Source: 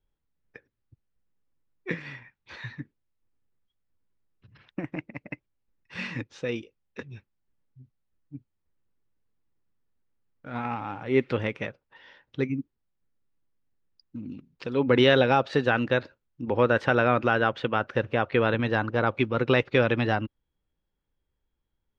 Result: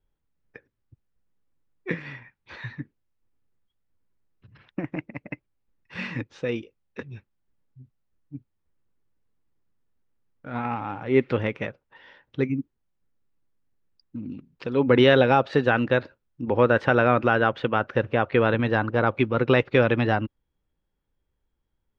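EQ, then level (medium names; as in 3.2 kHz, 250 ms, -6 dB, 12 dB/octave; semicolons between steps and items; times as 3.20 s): treble shelf 4.4 kHz -9.5 dB; +3.0 dB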